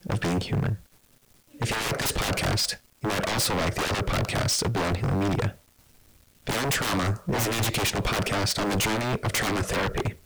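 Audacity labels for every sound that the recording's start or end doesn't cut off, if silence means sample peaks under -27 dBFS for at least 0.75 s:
1.610000	5.490000	sound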